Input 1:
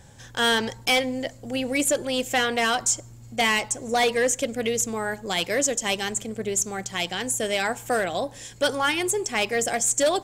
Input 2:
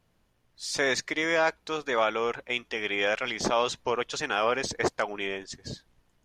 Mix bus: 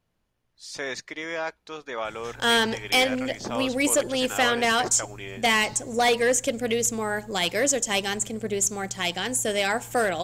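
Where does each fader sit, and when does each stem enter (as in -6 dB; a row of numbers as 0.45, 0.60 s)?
+0.5, -6.0 dB; 2.05, 0.00 s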